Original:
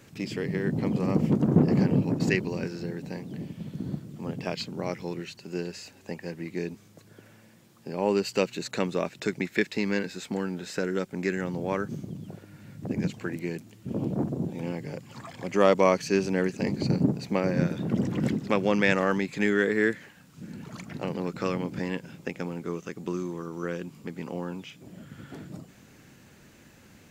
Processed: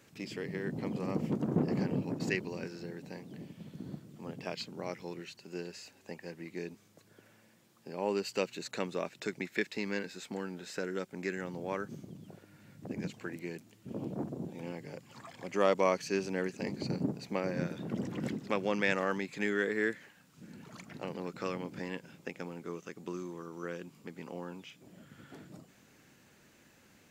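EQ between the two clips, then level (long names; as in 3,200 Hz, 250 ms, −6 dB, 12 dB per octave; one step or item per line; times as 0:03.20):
low-shelf EQ 200 Hz −8 dB
−6.0 dB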